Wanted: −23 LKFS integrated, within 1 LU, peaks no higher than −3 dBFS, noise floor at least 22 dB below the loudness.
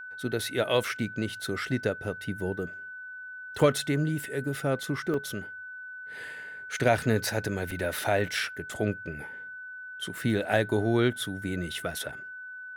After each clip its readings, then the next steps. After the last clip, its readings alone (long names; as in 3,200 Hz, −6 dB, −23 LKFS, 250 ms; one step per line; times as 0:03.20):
number of dropouts 2; longest dropout 3.0 ms; interfering tone 1,500 Hz; level of the tone −39 dBFS; integrated loudness −29.5 LKFS; sample peak −10.0 dBFS; target loudness −23.0 LKFS
→ repair the gap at 0:05.14/0:07.71, 3 ms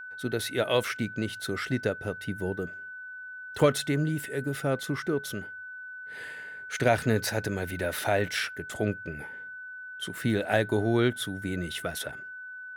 number of dropouts 0; interfering tone 1,500 Hz; level of the tone −39 dBFS
→ notch filter 1,500 Hz, Q 30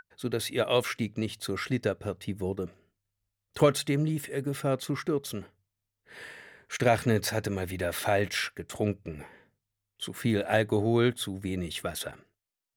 interfering tone none found; integrated loudness −29.5 LKFS; sample peak −10.5 dBFS; target loudness −23.0 LKFS
→ level +6.5 dB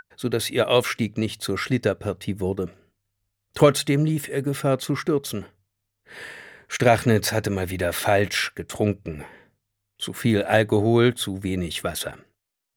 integrated loudness −23.0 LKFS; sample peak −4.0 dBFS; background noise floor −80 dBFS